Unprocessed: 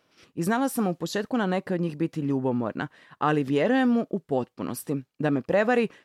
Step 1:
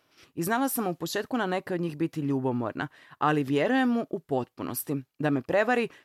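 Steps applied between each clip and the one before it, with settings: graphic EQ with 31 bands 200 Hz -11 dB, 500 Hz -5 dB, 12.5 kHz +9 dB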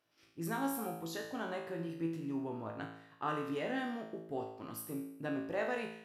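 feedback comb 55 Hz, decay 0.76 s, harmonics all, mix 90%; trim -1 dB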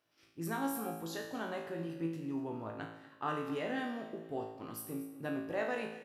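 feedback delay 240 ms, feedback 38%, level -16 dB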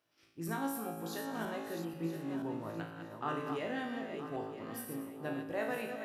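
backward echo that repeats 485 ms, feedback 48%, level -6.5 dB; trim -1 dB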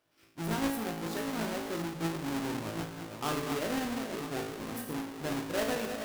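square wave that keeps the level

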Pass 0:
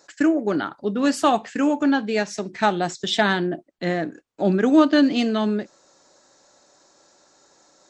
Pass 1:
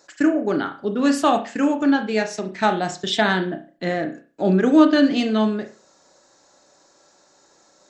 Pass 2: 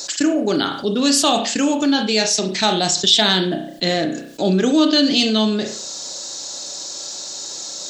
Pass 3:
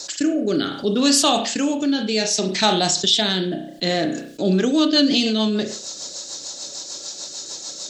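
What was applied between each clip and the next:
reverberation, pre-delay 32 ms, DRR 6.5 dB
resonant high shelf 2.6 kHz +12.5 dB, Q 1.5; level flattener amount 50%; trim -3.5 dB
rotary cabinet horn 0.65 Hz, later 6.7 Hz, at 4.08 s

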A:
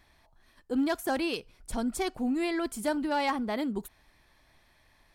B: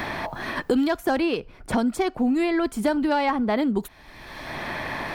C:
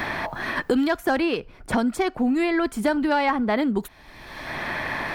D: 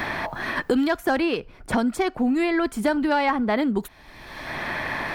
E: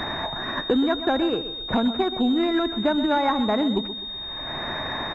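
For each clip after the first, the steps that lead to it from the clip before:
peaking EQ 10 kHz -11 dB 1.8 oct; three bands compressed up and down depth 100%; trim +7.5 dB
dynamic bell 1.7 kHz, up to +4 dB, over -41 dBFS, Q 1.2
no audible change
feedback delay 127 ms, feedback 36%, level -12 dB; class-D stage that switches slowly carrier 3.7 kHz

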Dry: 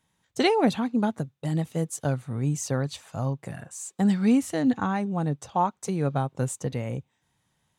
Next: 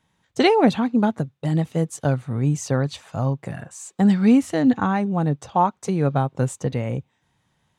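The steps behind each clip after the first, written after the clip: treble shelf 7.2 kHz -11.5 dB; trim +5.5 dB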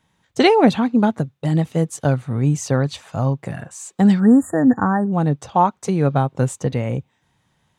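spectral selection erased 4.20–5.12 s, 1.9–6.8 kHz; trim +3 dB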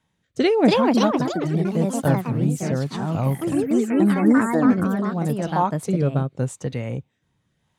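ever faster or slower copies 346 ms, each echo +3 st, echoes 3; rotary cabinet horn 0.85 Hz; trim -3 dB

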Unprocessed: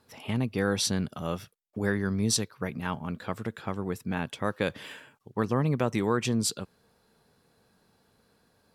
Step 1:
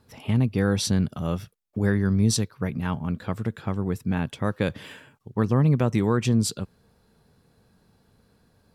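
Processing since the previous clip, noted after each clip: bass shelf 210 Hz +12 dB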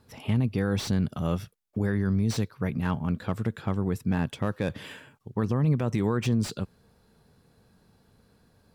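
peak limiter -17 dBFS, peak gain reduction 7 dB; slew-rate limiter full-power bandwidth 100 Hz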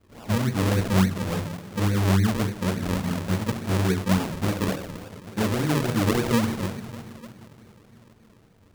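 two-slope reverb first 0.49 s, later 4 s, from -18 dB, DRR -7 dB; decimation with a swept rate 42×, swing 100% 3.5 Hz; trim -5 dB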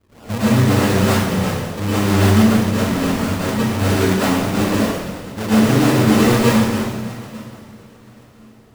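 plate-style reverb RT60 0.93 s, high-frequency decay 0.95×, pre-delay 95 ms, DRR -10 dB; trim -1 dB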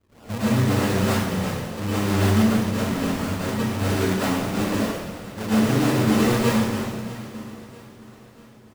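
feedback delay 644 ms, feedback 51%, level -19 dB; trim -6 dB

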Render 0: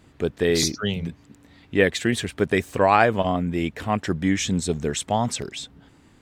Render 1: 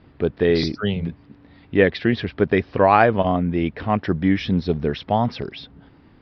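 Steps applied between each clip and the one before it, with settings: steep low-pass 5.3 kHz 96 dB/octave; treble shelf 2.8 kHz -10 dB; trim +3.5 dB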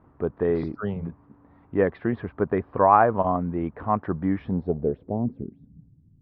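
companded quantiser 8-bit; low-pass sweep 1.1 kHz -> 140 Hz, 4.36–5.91 s; trim -6.5 dB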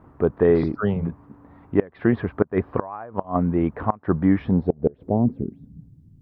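inverted gate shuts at -12 dBFS, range -25 dB; trim +6.5 dB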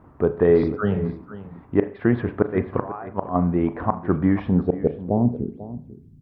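delay 492 ms -15.5 dB; on a send at -11 dB: reverberation RT60 0.45 s, pre-delay 33 ms

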